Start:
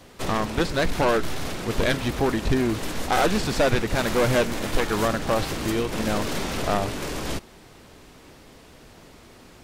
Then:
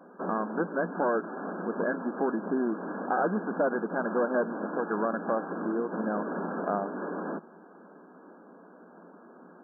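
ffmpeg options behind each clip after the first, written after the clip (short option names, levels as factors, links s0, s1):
-filter_complex "[0:a]afftfilt=real='re*between(b*sr/4096,170,1700)':imag='im*between(b*sr/4096,170,1700)':win_size=4096:overlap=0.75,asplit=2[s0][s1];[s1]acompressor=threshold=0.0316:ratio=6,volume=1.26[s2];[s0][s2]amix=inputs=2:normalize=0,volume=0.398"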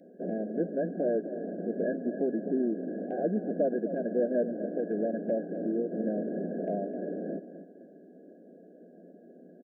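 -af "asuperstop=centerf=1100:order=12:qfactor=1,aecho=1:1:257|514|771:0.251|0.0854|0.029"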